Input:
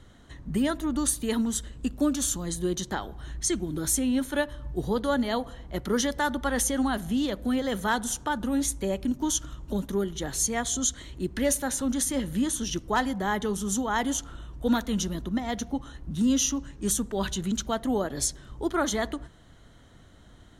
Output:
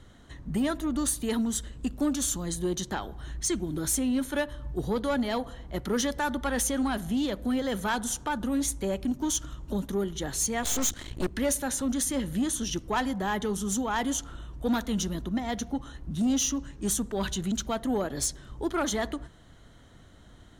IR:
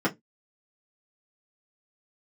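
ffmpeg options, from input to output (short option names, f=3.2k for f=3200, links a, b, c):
-filter_complex "[0:a]asoftclip=type=tanh:threshold=-19.5dB,asplit=3[a][b][c];[a]afade=t=out:st=10.62:d=0.02[d];[b]aeval=exprs='0.106*(cos(1*acos(clip(val(0)/0.106,-1,1)))-cos(1*PI/2))+0.0237*(cos(8*acos(clip(val(0)/0.106,-1,1)))-cos(8*PI/2))':c=same,afade=t=in:st=10.62:d=0.02,afade=t=out:st=11.28:d=0.02[e];[c]afade=t=in:st=11.28:d=0.02[f];[d][e][f]amix=inputs=3:normalize=0"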